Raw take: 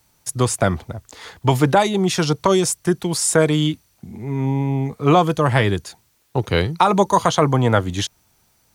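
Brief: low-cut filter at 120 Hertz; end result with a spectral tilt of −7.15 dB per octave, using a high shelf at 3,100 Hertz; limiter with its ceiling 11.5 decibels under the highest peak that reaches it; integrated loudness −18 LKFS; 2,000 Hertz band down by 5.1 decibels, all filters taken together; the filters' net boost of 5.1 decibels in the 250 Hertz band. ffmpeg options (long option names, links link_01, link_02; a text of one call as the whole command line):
ffmpeg -i in.wav -af "highpass=120,equalizer=frequency=250:width_type=o:gain=8,equalizer=frequency=2000:width_type=o:gain=-4.5,highshelf=frequency=3100:gain=-8,volume=4dB,alimiter=limit=-7.5dB:level=0:latency=1" out.wav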